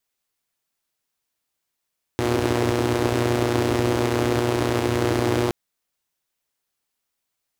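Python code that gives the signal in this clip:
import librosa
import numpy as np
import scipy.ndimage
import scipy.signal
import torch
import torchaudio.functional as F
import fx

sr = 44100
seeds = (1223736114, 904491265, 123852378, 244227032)

y = fx.engine_four(sr, seeds[0], length_s=3.32, rpm=3600, resonances_hz=(100.0, 310.0))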